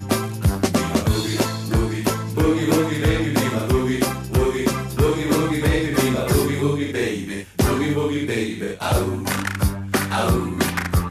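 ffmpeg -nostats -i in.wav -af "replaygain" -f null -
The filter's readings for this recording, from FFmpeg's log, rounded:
track_gain = +2.4 dB
track_peak = 0.403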